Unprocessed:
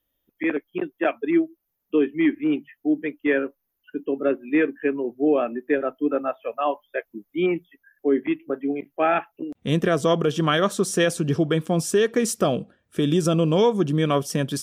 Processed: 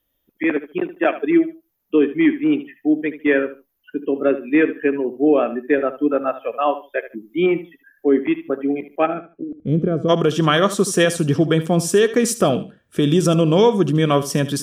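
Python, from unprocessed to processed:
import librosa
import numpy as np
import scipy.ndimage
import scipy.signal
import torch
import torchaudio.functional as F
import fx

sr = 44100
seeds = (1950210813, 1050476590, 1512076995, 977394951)

y = fx.moving_average(x, sr, points=48, at=(9.05, 10.08), fade=0.02)
y = fx.echo_feedback(y, sr, ms=75, feedback_pct=22, wet_db=-14.0)
y = F.gain(torch.from_numpy(y), 4.5).numpy()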